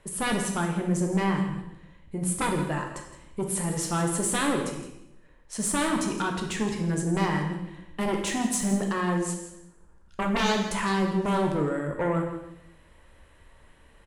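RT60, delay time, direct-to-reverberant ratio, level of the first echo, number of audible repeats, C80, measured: 0.85 s, 165 ms, 1.5 dB, −13.5 dB, 1, 7.5 dB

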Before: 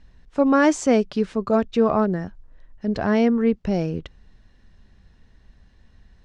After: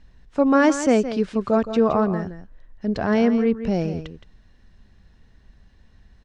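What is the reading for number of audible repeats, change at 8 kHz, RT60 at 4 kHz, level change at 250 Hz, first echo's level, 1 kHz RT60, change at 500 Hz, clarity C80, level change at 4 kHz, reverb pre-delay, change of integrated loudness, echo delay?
1, can't be measured, no reverb audible, +0.5 dB, −11.5 dB, no reverb audible, +0.5 dB, no reverb audible, +0.5 dB, no reverb audible, 0.0 dB, 168 ms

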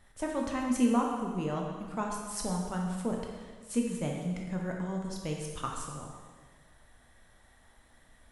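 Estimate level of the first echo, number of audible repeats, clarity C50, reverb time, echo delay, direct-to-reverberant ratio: no echo audible, no echo audible, 2.0 dB, 1.5 s, no echo audible, −0.5 dB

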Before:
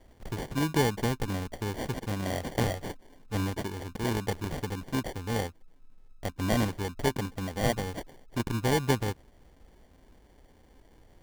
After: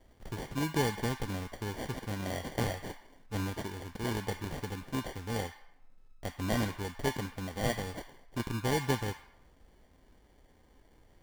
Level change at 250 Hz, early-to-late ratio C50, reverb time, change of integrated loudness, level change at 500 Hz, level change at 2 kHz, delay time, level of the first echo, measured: −4.5 dB, 9.5 dB, 0.95 s, −4.0 dB, −4.5 dB, −3.0 dB, no echo audible, no echo audible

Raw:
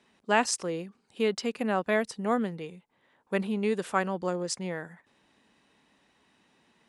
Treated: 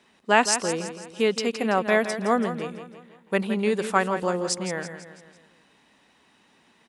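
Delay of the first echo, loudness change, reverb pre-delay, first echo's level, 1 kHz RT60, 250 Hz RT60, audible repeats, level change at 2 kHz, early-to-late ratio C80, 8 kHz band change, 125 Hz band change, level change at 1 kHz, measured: 166 ms, +5.0 dB, no reverb audible, −10.5 dB, no reverb audible, no reverb audible, 4, +6.5 dB, no reverb audible, +6.5 dB, +3.5 dB, +6.0 dB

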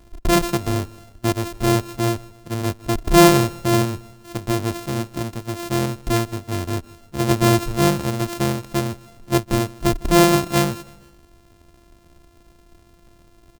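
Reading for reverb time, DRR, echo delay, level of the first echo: no reverb audible, no reverb audible, 156 ms, −22.0 dB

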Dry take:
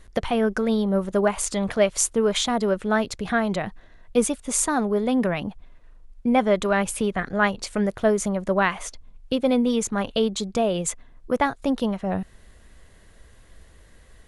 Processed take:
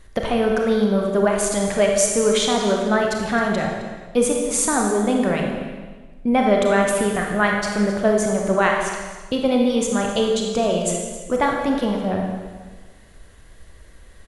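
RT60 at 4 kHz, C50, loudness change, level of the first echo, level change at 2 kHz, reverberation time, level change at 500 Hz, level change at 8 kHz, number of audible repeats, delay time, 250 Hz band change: 1.2 s, 2.0 dB, +3.5 dB, −15.5 dB, +4.0 dB, 1.3 s, +4.5 dB, +3.5 dB, 1, 264 ms, +3.0 dB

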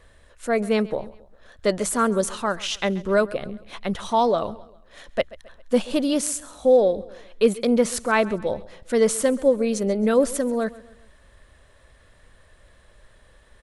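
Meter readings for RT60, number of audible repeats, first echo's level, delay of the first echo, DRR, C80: no reverb audible, 3, −20.0 dB, 134 ms, no reverb audible, no reverb audible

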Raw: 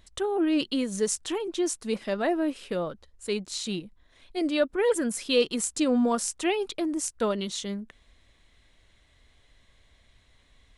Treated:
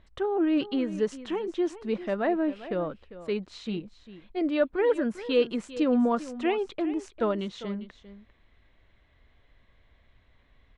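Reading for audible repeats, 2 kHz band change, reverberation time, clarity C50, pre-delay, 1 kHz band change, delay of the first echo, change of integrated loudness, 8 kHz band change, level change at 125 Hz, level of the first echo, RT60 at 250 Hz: 1, −2.0 dB, no reverb audible, no reverb audible, no reverb audible, 0.0 dB, 399 ms, −0.5 dB, below −20 dB, 0.0 dB, −15.0 dB, no reverb audible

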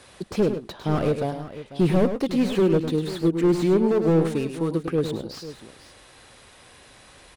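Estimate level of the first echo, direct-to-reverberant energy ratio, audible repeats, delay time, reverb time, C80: −9.0 dB, no reverb audible, 2, 103 ms, no reverb audible, no reverb audible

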